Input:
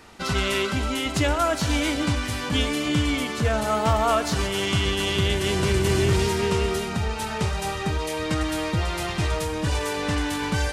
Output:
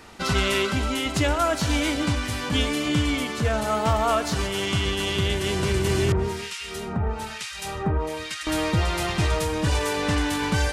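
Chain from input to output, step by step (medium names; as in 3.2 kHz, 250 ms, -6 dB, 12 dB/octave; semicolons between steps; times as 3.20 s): gain riding 2 s; 6.12–8.47 s: harmonic tremolo 1.1 Hz, depth 100%, crossover 1.6 kHz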